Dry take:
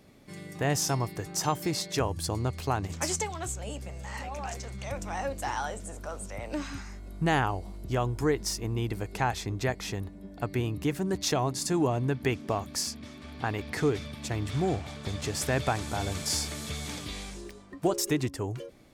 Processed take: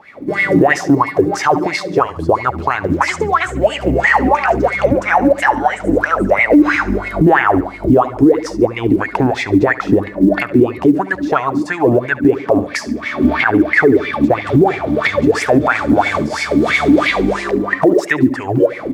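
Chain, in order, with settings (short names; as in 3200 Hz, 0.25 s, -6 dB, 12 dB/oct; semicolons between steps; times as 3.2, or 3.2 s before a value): recorder AGC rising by 31 dB/s; low shelf 130 Hz +11.5 dB; wah 3 Hz 270–2200 Hz, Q 8.7; short-mantissa float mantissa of 6-bit; on a send: feedback echo 71 ms, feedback 43%, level -19 dB; on the sum: maximiser +32 dB; gain -1 dB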